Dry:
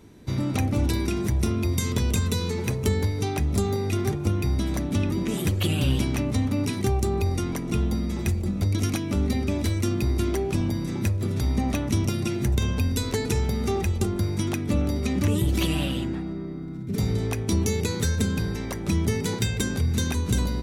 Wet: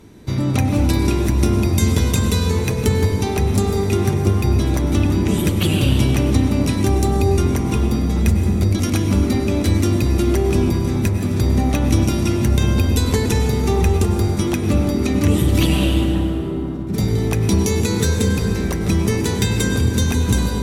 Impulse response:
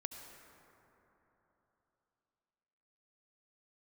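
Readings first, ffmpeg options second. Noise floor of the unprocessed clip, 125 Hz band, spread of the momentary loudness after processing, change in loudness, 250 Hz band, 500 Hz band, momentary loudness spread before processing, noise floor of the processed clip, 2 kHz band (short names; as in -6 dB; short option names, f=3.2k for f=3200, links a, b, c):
-32 dBFS, +7.5 dB, 3 LU, +7.5 dB, +8.0 dB, +8.0 dB, 3 LU, -22 dBFS, +6.5 dB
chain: -filter_complex "[1:a]atrim=start_sample=2205,asetrate=31311,aresample=44100[a];[0:a][a]afir=irnorm=-1:irlink=0,volume=7.5dB"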